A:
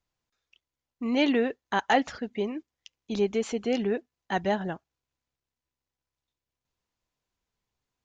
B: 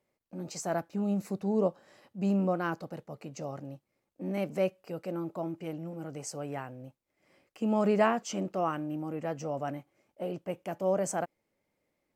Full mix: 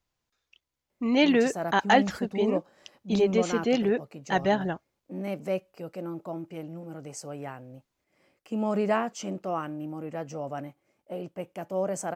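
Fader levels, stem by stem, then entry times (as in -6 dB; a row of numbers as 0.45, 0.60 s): +2.5, -0.5 dB; 0.00, 0.90 s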